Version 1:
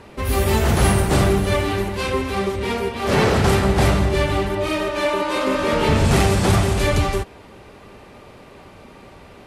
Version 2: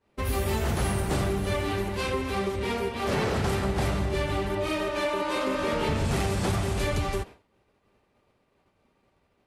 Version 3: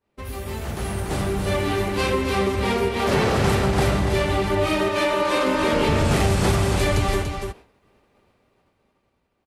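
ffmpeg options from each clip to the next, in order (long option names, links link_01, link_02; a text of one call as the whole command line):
ffmpeg -i in.wav -af "agate=range=-33dB:threshold=-29dB:ratio=3:detection=peak,acompressor=threshold=-20dB:ratio=3,volume=-4.5dB" out.wav
ffmpeg -i in.wav -af "dynaudnorm=framelen=280:gausssize=9:maxgain=12dB,aecho=1:1:288:0.473,volume=-5dB" out.wav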